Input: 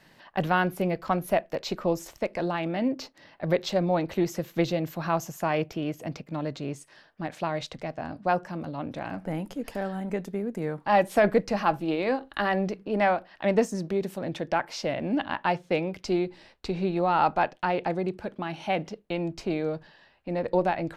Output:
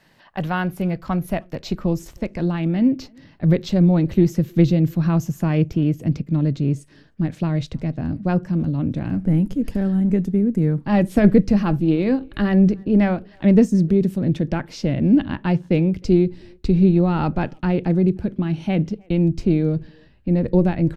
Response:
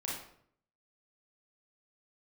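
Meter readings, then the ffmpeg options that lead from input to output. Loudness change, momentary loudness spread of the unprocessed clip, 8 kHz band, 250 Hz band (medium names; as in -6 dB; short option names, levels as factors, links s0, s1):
+8.5 dB, 10 LU, no reading, +13.0 dB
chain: -filter_complex "[0:a]asplit=2[s0][s1];[s1]adelay=310,highpass=300,lowpass=3400,asoftclip=type=hard:threshold=0.112,volume=0.0398[s2];[s0][s2]amix=inputs=2:normalize=0,asubboost=boost=11:cutoff=230"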